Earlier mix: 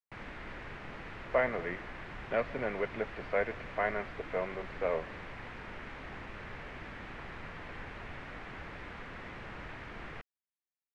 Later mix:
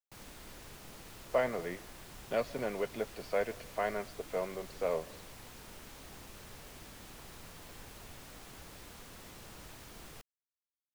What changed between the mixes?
background -6.0 dB; master: remove resonant low-pass 2 kHz, resonance Q 2

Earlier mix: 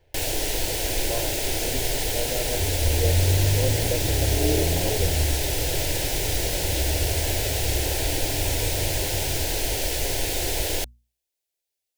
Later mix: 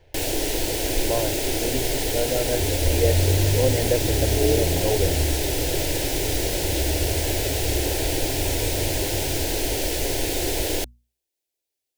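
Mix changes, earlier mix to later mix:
speech +6.5 dB; first sound: add peaking EQ 310 Hz +7 dB 1.2 oct

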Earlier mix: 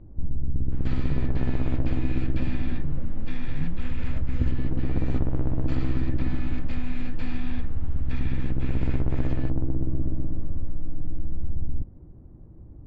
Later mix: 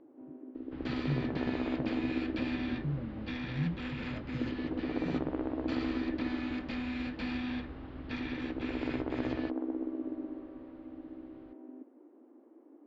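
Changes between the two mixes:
first sound: add brick-wall FIR high-pass 240 Hz; master: add resonant low-pass 4.7 kHz, resonance Q 1.5

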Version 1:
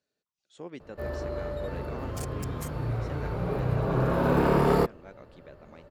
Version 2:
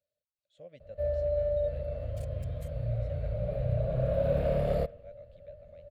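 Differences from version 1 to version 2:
first sound: send +11.0 dB; master: add FFT filter 100 Hz 0 dB, 380 Hz -25 dB, 590 Hz +6 dB, 890 Hz -27 dB, 2.1 kHz -12 dB, 3.9 kHz -10 dB, 5.5 kHz -20 dB, 8.9 kHz -16 dB

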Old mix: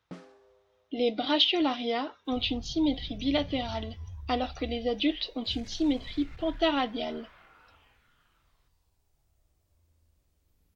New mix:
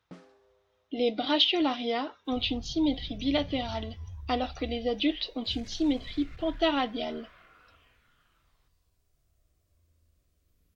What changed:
first sound -4.0 dB; second sound: add Butterworth band-stop 860 Hz, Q 4.2

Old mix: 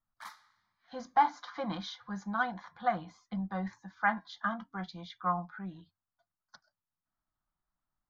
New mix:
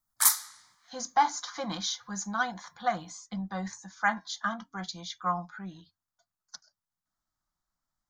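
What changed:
background +11.5 dB; master: remove distance through air 330 m

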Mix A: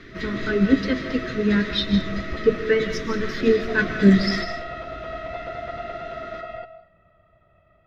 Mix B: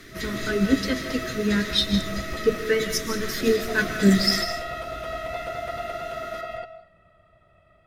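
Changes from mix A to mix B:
speech -3.5 dB; master: remove distance through air 230 m

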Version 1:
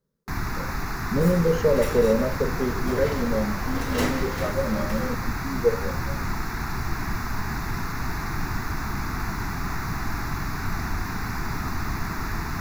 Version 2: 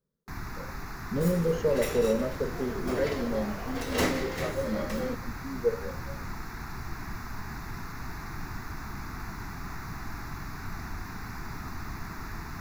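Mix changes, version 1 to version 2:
speech -5.5 dB; first sound -9.5 dB

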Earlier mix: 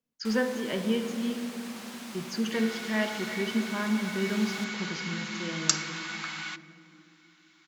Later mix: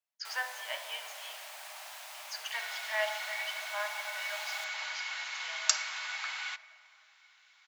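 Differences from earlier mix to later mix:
first sound: remove frequency weighting A; master: add rippled Chebyshev high-pass 600 Hz, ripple 3 dB

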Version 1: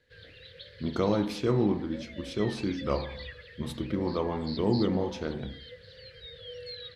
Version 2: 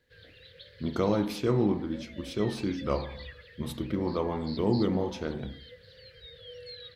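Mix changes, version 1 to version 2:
background -3.0 dB; master: remove low-pass 9.9 kHz 12 dB/octave

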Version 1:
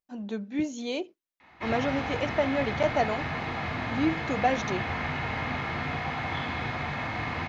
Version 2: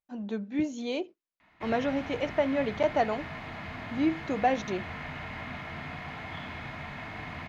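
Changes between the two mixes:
speech: add treble shelf 4.6 kHz -7.5 dB; background: send -11.0 dB

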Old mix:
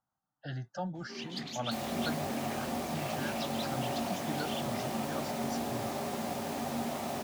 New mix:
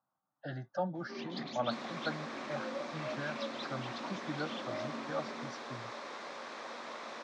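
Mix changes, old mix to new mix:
second sound: send off; master: add cabinet simulation 150–4900 Hz, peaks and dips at 330 Hz +3 dB, 570 Hz +6 dB, 1.1 kHz +6 dB, 2.9 kHz -8 dB, 4.7 kHz -4 dB

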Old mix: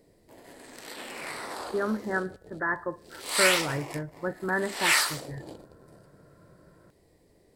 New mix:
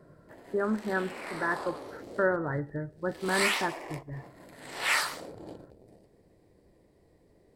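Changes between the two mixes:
speech: entry -1.20 s; master: add treble shelf 2.8 kHz -9 dB

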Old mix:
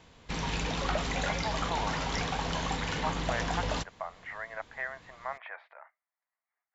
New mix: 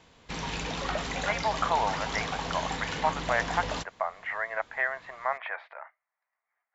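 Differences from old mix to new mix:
speech +8.0 dB; master: add bass shelf 150 Hz -5.5 dB

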